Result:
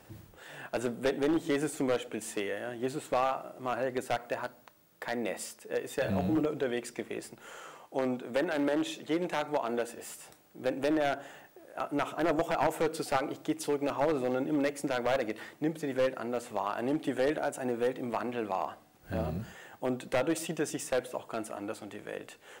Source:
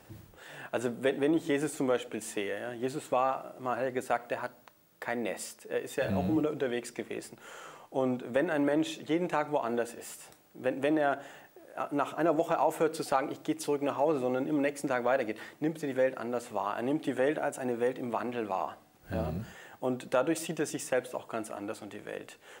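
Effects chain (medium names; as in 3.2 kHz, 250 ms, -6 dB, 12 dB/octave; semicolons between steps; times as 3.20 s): one-sided wavefolder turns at -22.5 dBFS; 7.61–9.93 s: bass shelf 97 Hz -11.5 dB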